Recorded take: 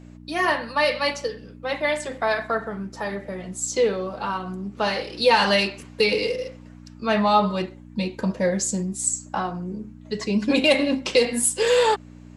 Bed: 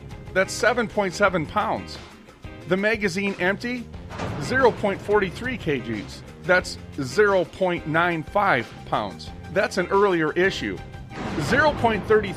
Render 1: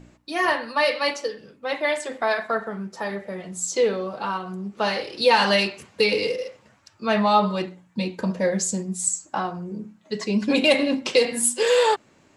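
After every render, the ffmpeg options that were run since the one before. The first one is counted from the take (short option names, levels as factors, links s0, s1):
-af "bandreject=f=60:t=h:w=4,bandreject=f=120:t=h:w=4,bandreject=f=180:t=h:w=4,bandreject=f=240:t=h:w=4,bandreject=f=300:t=h:w=4"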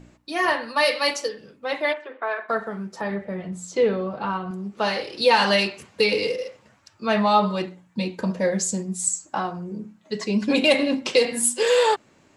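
-filter_complex "[0:a]asettb=1/sr,asplit=3[s0][s1][s2];[s0]atrim=end=0.764[s3];[s1]atrim=start=0.76:end=1.29,asetpts=PTS-STARTPTS,afade=t=in:d=0.004:c=qsin,afade=t=out:st=0.526:d=0.004:c=qsin,highshelf=f=6200:g=11.5[s4];[s2]atrim=start=1.286[s5];[s3][s4]acrossfade=d=0.004:c1=hsin:c2=qsin[s6];[s6][s5]acrossfade=d=0.004:c1=qsin:c2=hsin,asplit=3[s7][s8][s9];[s7]afade=t=out:st=1.92:d=0.02[s10];[s8]highpass=f=360:w=0.5412,highpass=f=360:w=1.3066,equalizer=f=540:t=q:w=4:g=-6,equalizer=f=770:t=q:w=4:g=-9,equalizer=f=2000:t=q:w=4:g=-8,lowpass=f=2500:w=0.5412,lowpass=f=2500:w=1.3066,afade=t=in:st=1.92:d=0.02,afade=t=out:st=2.48:d=0.02[s11];[s9]afade=t=in:st=2.48:d=0.02[s12];[s10][s11][s12]amix=inputs=3:normalize=0,asettb=1/sr,asplit=3[s13][s14][s15];[s13]atrim=end=3.014[s16];[s14]atrim=start=3.01:end=4.51,asetpts=PTS-STARTPTS,afade=t=in:d=0.004:c=qsin,afade=t=out:st=1.496:d=0.004:c=qsin,bass=f=250:g=7,treble=f=4000:g=-12[s17];[s15]atrim=start=4.506[s18];[s16][s17]acrossfade=d=0.004:c1=hsin:c2=qsin[s19];[s19][s18]acrossfade=d=0.004:c1=qsin:c2=hsin"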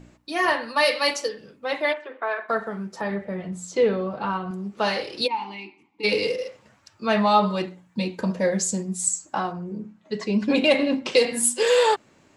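-filter_complex "[0:a]asplit=3[s0][s1][s2];[s0]afade=t=out:st=5.26:d=0.02[s3];[s1]asplit=3[s4][s5][s6];[s4]bandpass=f=300:t=q:w=8,volume=1[s7];[s5]bandpass=f=870:t=q:w=8,volume=0.501[s8];[s6]bandpass=f=2240:t=q:w=8,volume=0.355[s9];[s7][s8][s9]amix=inputs=3:normalize=0,afade=t=in:st=5.26:d=0.02,afade=t=out:st=6.03:d=0.02[s10];[s2]afade=t=in:st=6.03:d=0.02[s11];[s3][s10][s11]amix=inputs=3:normalize=0,asettb=1/sr,asplit=3[s12][s13][s14];[s12]atrim=end=9.524[s15];[s13]atrim=start=9.52:end=11.12,asetpts=PTS-STARTPTS,afade=t=in:d=0.004:c=qsin,afade=t=out:st=1.596:d=0.004:c=qsin,lowpass=f=3400:p=1[s16];[s14]atrim=start=11.116[s17];[s15][s16]acrossfade=d=0.004:c1=hsin:c2=qsin[s18];[s18][s17]acrossfade=d=0.004:c1=qsin:c2=hsin"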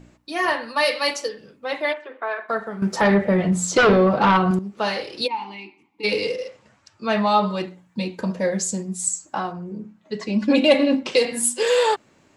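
-filter_complex "[0:a]asettb=1/sr,asplit=3[s0][s1][s2];[s0]atrim=end=2.824[s3];[s1]atrim=start=2.82:end=4.59,asetpts=PTS-STARTPTS,afade=t=in:d=0.004:c=qsin,afade=t=out:st=1.766:d=0.004:c=qsin,aeval=exprs='0.299*sin(PI/2*2.82*val(0)/0.299)':c=same[s4];[s2]atrim=start=4.586[s5];[s3][s4]acrossfade=d=0.004:c1=hsin:c2=qsin[s6];[s6][s5]acrossfade=d=0.004:c1=qsin:c2=hsin,asettb=1/sr,asplit=3[s7][s8][s9];[s7]atrim=end=6.244[s10];[s8]atrim=start=6.24:end=7.6,asetpts=PTS-STARTPTS,afade=t=in:d=0.004:c=qsin,afade=t=out:st=1.356:d=0.004:c=qsin,lowpass=f=10000:w=0.5412,lowpass=f=10000:w=1.3066[s11];[s9]atrim=start=7.596[s12];[s10][s11]acrossfade=d=0.004:c1=hsin:c2=qsin[s13];[s13][s12]acrossfade=d=0.004:c1=qsin:c2=hsin,asettb=1/sr,asplit=3[s14][s15][s16];[s14]atrim=end=10.284[s17];[s15]atrim=start=10.28:end=11.03,asetpts=PTS-STARTPTS,afade=t=in:d=0.004:c=qsin,afade=t=out:st=0.746:d=0.004:c=qsin,aecho=1:1:3.5:0.65,atrim=end_sample=33075[s18];[s16]atrim=start=11.026[s19];[s17][s18]acrossfade=d=0.004:c1=hsin:c2=qsin[s20];[s20][s19]acrossfade=d=0.004:c1=qsin:c2=hsin"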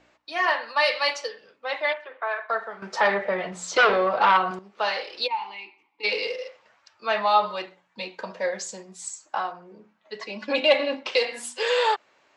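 -filter_complex "[0:a]acrossover=split=490 5800:gain=0.0794 1 0.0631[s0][s1][s2];[s0][s1][s2]amix=inputs=3:normalize=0"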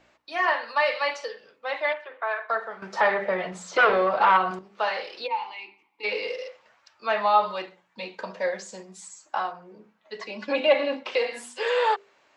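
-filter_complex "[0:a]acrossover=split=2600[s0][s1];[s1]acompressor=threshold=0.01:ratio=4:attack=1:release=60[s2];[s0][s2]amix=inputs=2:normalize=0,bandreject=f=50:t=h:w=6,bandreject=f=100:t=h:w=6,bandreject=f=150:t=h:w=6,bandreject=f=200:t=h:w=6,bandreject=f=250:t=h:w=6,bandreject=f=300:t=h:w=6,bandreject=f=350:t=h:w=6,bandreject=f=400:t=h:w=6,bandreject=f=450:t=h:w=6,bandreject=f=500:t=h:w=6"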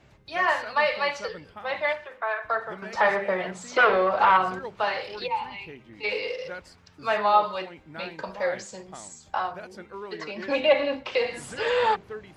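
-filter_complex "[1:a]volume=0.1[s0];[0:a][s0]amix=inputs=2:normalize=0"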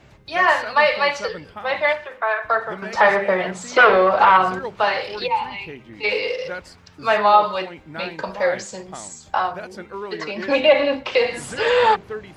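-af "volume=2.24,alimiter=limit=0.708:level=0:latency=1"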